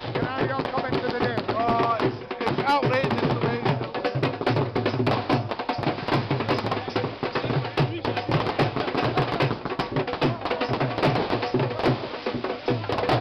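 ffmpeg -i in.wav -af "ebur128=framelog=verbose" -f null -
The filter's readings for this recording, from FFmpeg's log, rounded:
Integrated loudness:
  I:         -25.3 LUFS
  Threshold: -35.3 LUFS
Loudness range:
  LRA:         1.5 LU
  Threshold: -45.2 LUFS
  LRA low:   -25.9 LUFS
  LRA high:  -24.3 LUFS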